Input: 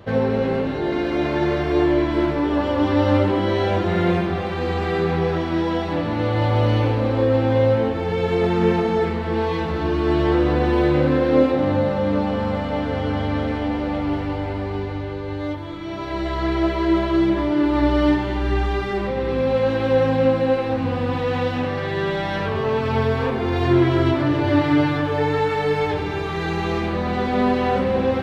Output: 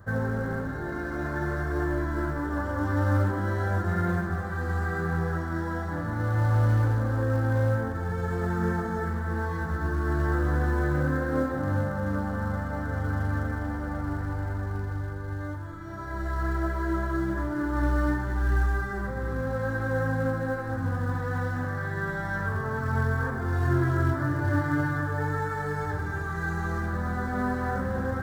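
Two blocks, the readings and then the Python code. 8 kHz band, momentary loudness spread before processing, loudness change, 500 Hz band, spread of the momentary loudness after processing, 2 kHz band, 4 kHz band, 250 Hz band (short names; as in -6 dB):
n/a, 6 LU, -7.5 dB, -13.0 dB, 7 LU, -3.0 dB, -19.5 dB, -10.5 dB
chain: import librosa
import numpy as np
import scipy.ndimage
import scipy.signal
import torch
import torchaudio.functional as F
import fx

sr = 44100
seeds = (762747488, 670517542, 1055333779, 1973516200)

p1 = fx.curve_eq(x, sr, hz=(100.0, 430.0, 1000.0, 1600.0, 2600.0, 7500.0), db=(0, -13, -7, 3, -29, 0))
p2 = fx.quant_float(p1, sr, bits=2)
p3 = p1 + F.gain(torch.from_numpy(p2), -11.0).numpy()
y = F.gain(torch.from_numpy(p3), -3.5).numpy()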